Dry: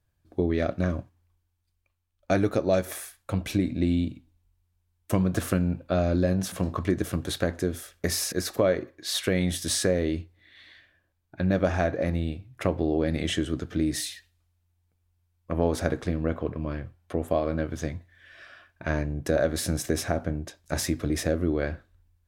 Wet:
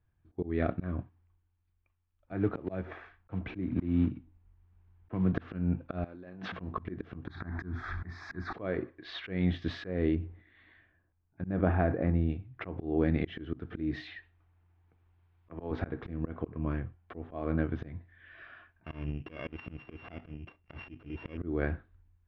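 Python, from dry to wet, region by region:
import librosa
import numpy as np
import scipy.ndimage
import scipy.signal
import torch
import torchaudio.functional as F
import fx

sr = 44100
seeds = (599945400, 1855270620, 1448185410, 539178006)

y = fx.chain(x, sr, fx.block_float(bits=5),
    fx.peak_eq(hz=4600.0, db=-8.0, octaves=1.6),
    fx.band_squash(depth_pct=40), at=(2.32, 5.33))
y = fx.chain(y, sr, fx.high_shelf(hz=6800.0, db=-9.0),
    fx.over_compress(threshold_db=-35.0, ratio=-1.0),
    fx.highpass(hz=560.0, slope=6), at=(6.04, 6.52))
y = fx.chain(y, sr, fx.law_mismatch(coded='mu'),
    fx.fixed_phaser(hz=1200.0, stages=4),
    fx.env_flatten(amount_pct=70), at=(7.27, 8.53))
y = fx.chain(y, sr, fx.high_shelf(hz=2200.0, db=-11.0),
    fx.sustainer(db_per_s=120.0), at=(10.15, 12.3))
y = fx.chain(y, sr, fx.peak_eq(hz=210.0, db=-14.0, octaves=0.26),
    fx.band_squash(depth_pct=40), at=(14.07, 15.71))
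y = fx.chain(y, sr, fx.sample_sort(block=16),
    fx.level_steps(step_db=10), at=(18.84, 21.38))
y = scipy.signal.sosfilt(scipy.signal.bessel(6, 2000.0, 'lowpass', norm='mag', fs=sr, output='sos'), y)
y = fx.peak_eq(y, sr, hz=570.0, db=-9.0, octaves=0.3)
y = fx.auto_swell(y, sr, attack_ms=214.0)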